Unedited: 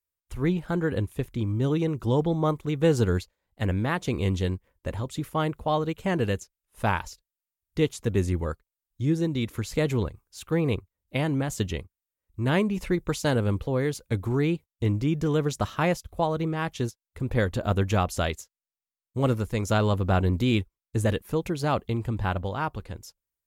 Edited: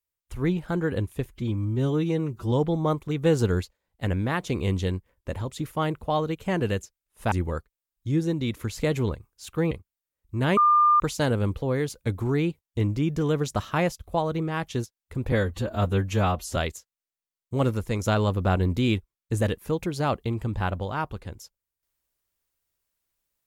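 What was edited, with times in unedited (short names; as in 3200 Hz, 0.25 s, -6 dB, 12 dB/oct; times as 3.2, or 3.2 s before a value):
1.26–2.1 stretch 1.5×
6.9–8.26 cut
10.65–11.76 cut
12.62–13.05 bleep 1200 Hz -15 dBFS
17.37–18.2 stretch 1.5×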